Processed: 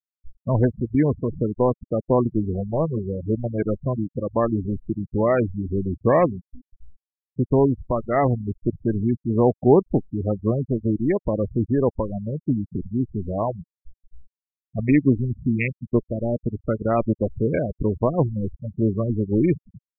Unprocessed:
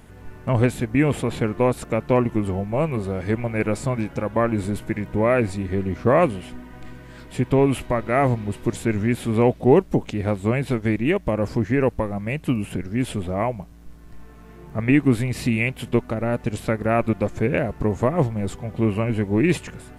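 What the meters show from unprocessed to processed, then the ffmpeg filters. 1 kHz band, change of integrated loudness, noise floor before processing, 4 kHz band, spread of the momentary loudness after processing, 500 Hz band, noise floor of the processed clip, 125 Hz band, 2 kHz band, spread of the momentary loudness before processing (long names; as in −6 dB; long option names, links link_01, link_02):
−2.0 dB, −0.5 dB, −44 dBFS, below −30 dB, 9 LU, −0.5 dB, below −85 dBFS, −0.5 dB, −8.0 dB, 8 LU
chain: -af "adynamicsmooth=sensitivity=1:basefreq=610,afftfilt=real='re*gte(hypot(re,im),0.126)':imag='im*gte(hypot(re,im),0.126)':win_size=1024:overlap=0.75"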